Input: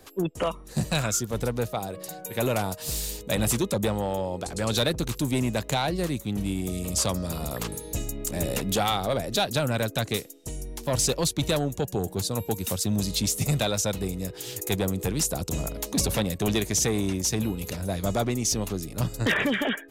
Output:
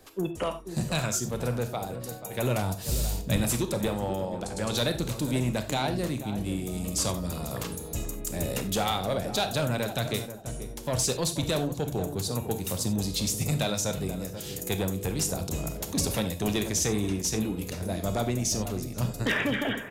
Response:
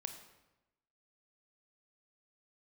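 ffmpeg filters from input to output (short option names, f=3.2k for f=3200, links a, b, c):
-filter_complex "[0:a]asettb=1/sr,asplit=3[a][b][c];[a]atrim=end=2.334[d];[b]atrim=start=2.33:end=3.38,asetpts=PTS-STARTPTS,afade=t=in:d=0.004:c=qsin,afade=t=out:st=1.046:d=0.004:c=qsin,asubboost=boost=11:cutoff=240[e];[c]atrim=start=3.376[f];[d][e]acrossfade=d=0.004:c1=hsin:c2=qsin[g];[g][f]acrossfade=d=0.004:c1=qsin:c2=hsin,asplit=2[h][i];[i]adelay=484,lowpass=f=940:p=1,volume=-9.5dB,asplit=2[j][k];[k]adelay=484,lowpass=f=940:p=1,volume=0.32,asplit=2[l][m];[m]adelay=484,lowpass=f=940:p=1,volume=0.32,asplit=2[n][o];[o]adelay=484,lowpass=f=940:p=1,volume=0.32[p];[h][j][l][n][p]amix=inputs=5:normalize=0[q];[1:a]atrim=start_sample=2205,atrim=end_sample=4410[r];[q][r]afir=irnorm=-1:irlink=0"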